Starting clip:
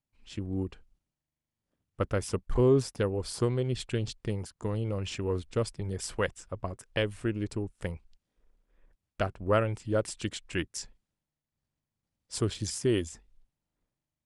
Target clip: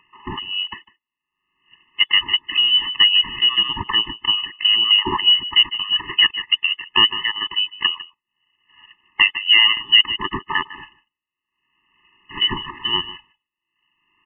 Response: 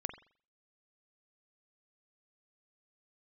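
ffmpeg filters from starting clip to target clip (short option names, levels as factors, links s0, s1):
-filter_complex "[0:a]highpass=f=290:p=1,aemphasis=mode=production:type=75kf,agate=range=0.0398:threshold=0.00178:ratio=16:detection=peak,highshelf=f=2400:g=-7,acompressor=mode=upward:threshold=0.0141:ratio=2.5,asplit=2[s0][s1];[s1]adelay=151.6,volume=0.1,highshelf=f=4000:g=-3.41[s2];[s0][s2]amix=inputs=2:normalize=0,lowpass=f=2900:t=q:w=0.5098,lowpass=f=2900:t=q:w=0.6013,lowpass=f=2900:t=q:w=0.9,lowpass=f=2900:t=q:w=2.563,afreqshift=-3400,alimiter=level_in=17.8:limit=0.891:release=50:level=0:latency=1,afftfilt=real='re*eq(mod(floor(b*sr/1024/430),2),0)':imag='im*eq(mod(floor(b*sr/1024/430),2),0)':win_size=1024:overlap=0.75"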